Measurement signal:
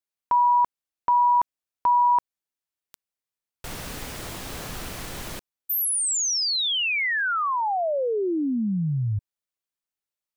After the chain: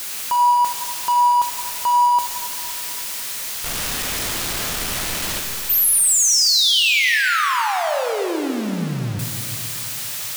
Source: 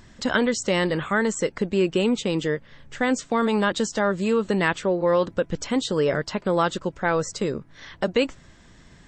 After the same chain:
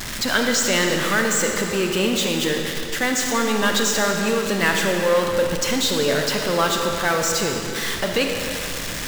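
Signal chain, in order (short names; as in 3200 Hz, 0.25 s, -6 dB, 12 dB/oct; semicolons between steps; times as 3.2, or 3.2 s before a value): zero-crossing step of -25 dBFS; tilt shelf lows -4.5 dB, about 1200 Hz; digital reverb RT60 2.7 s, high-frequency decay 0.9×, pre-delay 5 ms, DRR 2 dB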